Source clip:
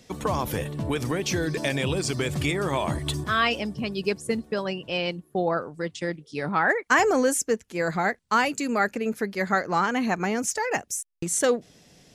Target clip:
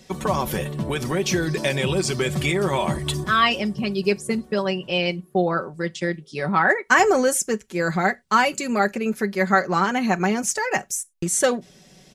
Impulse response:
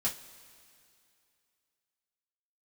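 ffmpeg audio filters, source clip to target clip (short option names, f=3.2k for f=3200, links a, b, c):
-filter_complex "[0:a]aecho=1:1:5.3:0.56,asplit=2[a][b];[1:a]atrim=start_sample=2205,atrim=end_sample=3969,adelay=20[c];[b][c]afir=irnorm=-1:irlink=0,volume=-25.5dB[d];[a][d]amix=inputs=2:normalize=0,volume=2.5dB"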